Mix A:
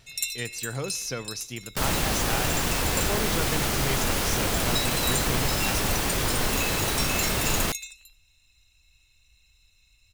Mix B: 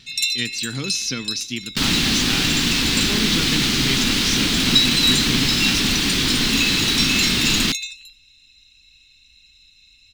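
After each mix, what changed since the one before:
master: add EQ curve 100 Hz 0 dB, 260 Hz +13 dB, 580 Hz -9 dB, 3900 Hz +15 dB, 11000 Hz -3 dB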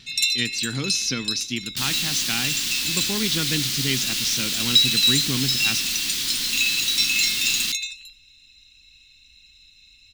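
second sound: add pre-emphasis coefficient 0.9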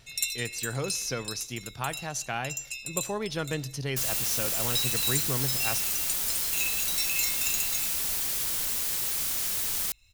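second sound: entry +2.20 s; master: add EQ curve 100 Hz 0 dB, 260 Hz -13 dB, 580 Hz +9 dB, 3900 Hz -15 dB, 11000 Hz +3 dB

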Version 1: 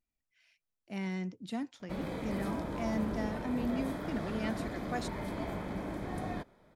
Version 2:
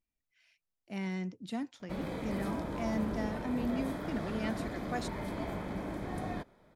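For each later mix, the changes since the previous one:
none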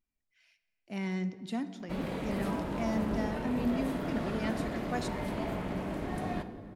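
background: remove Butterworth band-stop 2800 Hz, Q 8; reverb: on, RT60 2.3 s

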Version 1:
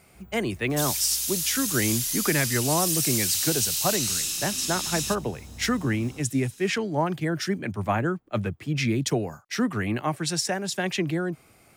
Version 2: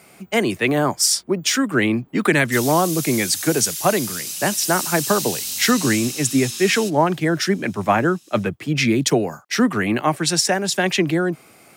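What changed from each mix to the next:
speech +8.5 dB; second sound: entry +1.75 s; master: add HPF 170 Hz 12 dB/oct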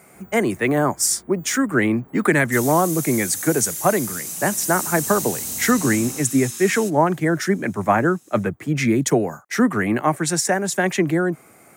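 first sound +10.0 dB; master: add band shelf 3700 Hz -9.5 dB 1.3 oct

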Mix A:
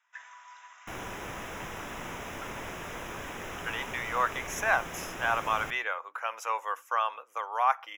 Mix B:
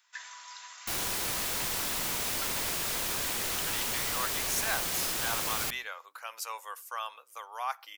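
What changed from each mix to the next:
speech -10.0 dB; master: remove running mean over 10 samples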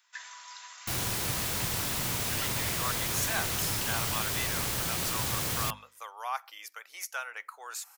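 speech: entry -1.35 s; second sound: add bell 110 Hz +13 dB 1.5 oct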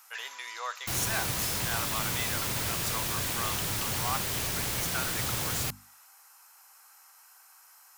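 speech: entry -2.20 s

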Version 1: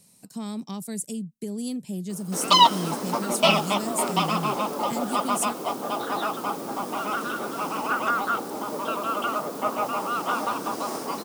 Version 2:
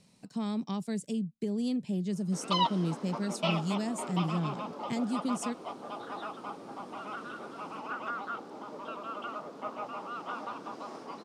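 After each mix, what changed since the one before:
background -12.0 dB; master: add LPF 4200 Hz 12 dB/oct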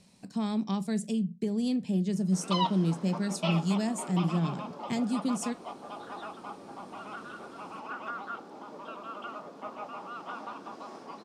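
background -4.0 dB; reverb: on, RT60 0.30 s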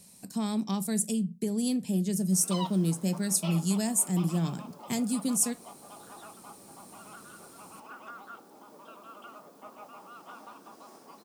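background -7.5 dB; master: remove LPF 4200 Hz 12 dB/oct

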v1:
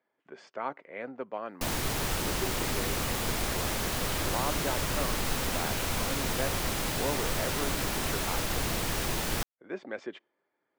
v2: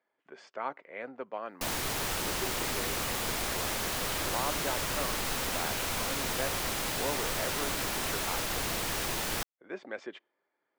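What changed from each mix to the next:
master: add low shelf 310 Hz -7.5 dB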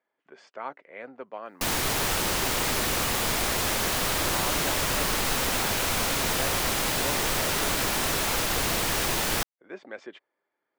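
background +6.5 dB; reverb: off

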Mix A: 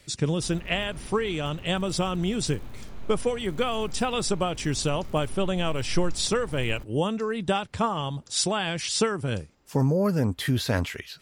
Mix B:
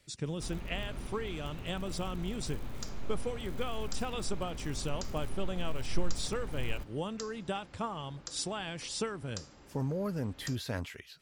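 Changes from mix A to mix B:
speech -11.0 dB; second sound +10.5 dB

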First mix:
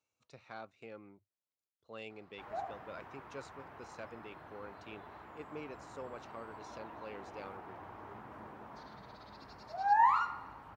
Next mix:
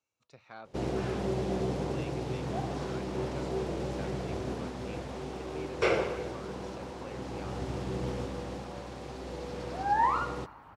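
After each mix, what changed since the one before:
first sound: unmuted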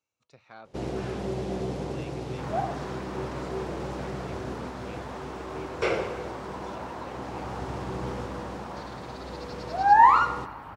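second sound +10.5 dB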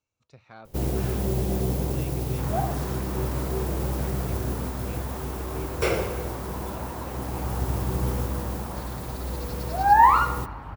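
first sound: remove Gaussian blur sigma 1.5 samples; master: remove HPF 290 Hz 6 dB/oct

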